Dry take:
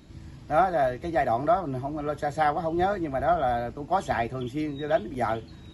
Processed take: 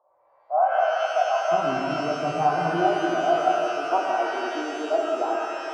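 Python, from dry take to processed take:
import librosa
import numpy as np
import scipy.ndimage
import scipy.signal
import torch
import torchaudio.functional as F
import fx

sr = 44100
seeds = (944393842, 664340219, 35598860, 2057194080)

y = fx.ellip_bandpass(x, sr, low_hz=fx.steps((0.0, 540.0), (1.51, 150.0), (2.81, 320.0)), high_hz=1100.0, order=3, stop_db=50)
y = fx.rev_shimmer(y, sr, seeds[0], rt60_s=2.9, semitones=12, shimmer_db=-8, drr_db=-1.5)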